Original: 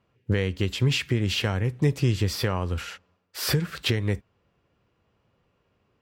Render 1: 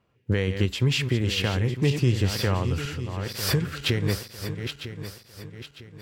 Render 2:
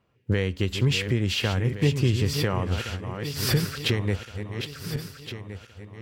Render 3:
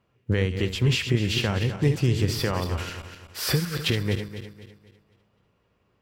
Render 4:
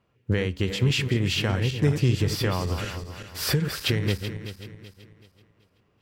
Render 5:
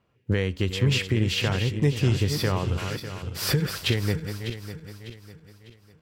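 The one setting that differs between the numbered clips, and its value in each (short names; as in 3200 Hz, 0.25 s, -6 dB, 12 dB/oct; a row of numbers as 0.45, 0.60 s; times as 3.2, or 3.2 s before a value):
regenerating reverse delay, time: 0.476, 0.709, 0.126, 0.19, 0.3 s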